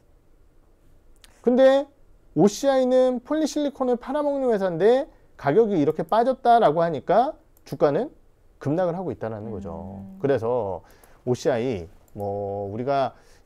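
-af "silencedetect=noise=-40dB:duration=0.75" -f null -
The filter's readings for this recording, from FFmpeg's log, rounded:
silence_start: 0.00
silence_end: 1.24 | silence_duration: 1.24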